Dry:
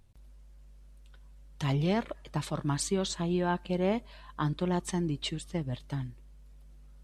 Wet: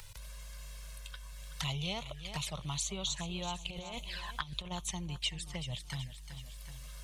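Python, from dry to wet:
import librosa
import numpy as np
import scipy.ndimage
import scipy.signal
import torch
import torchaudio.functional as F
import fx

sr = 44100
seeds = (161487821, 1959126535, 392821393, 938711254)

y = fx.env_flanger(x, sr, rest_ms=2.2, full_db=-29.5)
y = fx.over_compress(y, sr, threshold_db=-33.0, ratio=-0.5, at=(3.64, 4.7), fade=0.02)
y = fx.tone_stack(y, sr, knobs='10-0-10')
y = fx.echo_feedback(y, sr, ms=377, feedback_pct=31, wet_db=-16.0)
y = fx.band_squash(y, sr, depth_pct=70)
y = y * 10.0 ** (8.0 / 20.0)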